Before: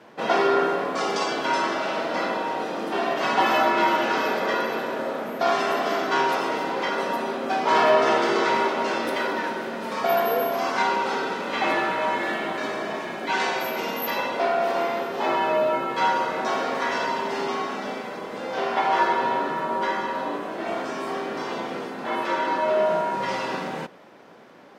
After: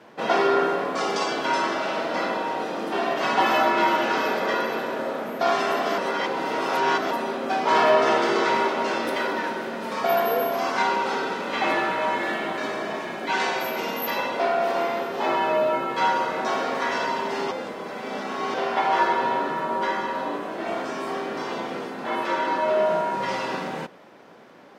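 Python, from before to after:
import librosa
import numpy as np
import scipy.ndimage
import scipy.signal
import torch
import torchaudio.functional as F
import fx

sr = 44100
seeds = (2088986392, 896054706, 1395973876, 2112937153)

y = fx.edit(x, sr, fx.reverse_span(start_s=5.98, length_s=1.13),
    fx.reverse_span(start_s=17.51, length_s=1.03), tone=tone)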